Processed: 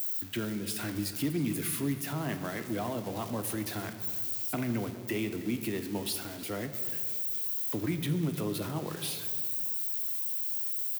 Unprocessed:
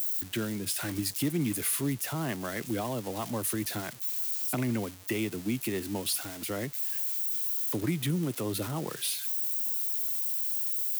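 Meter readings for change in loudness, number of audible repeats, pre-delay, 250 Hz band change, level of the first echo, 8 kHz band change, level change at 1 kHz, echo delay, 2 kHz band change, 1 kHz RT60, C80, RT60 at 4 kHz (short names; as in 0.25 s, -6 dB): -2.0 dB, 1, 3 ms, -1.0 dB, -18.0 dB, -5.5 dB, -1.0 dB, 0.317 s, -1.5 dB, 1.7 s, 10.5 dB, 1.0 s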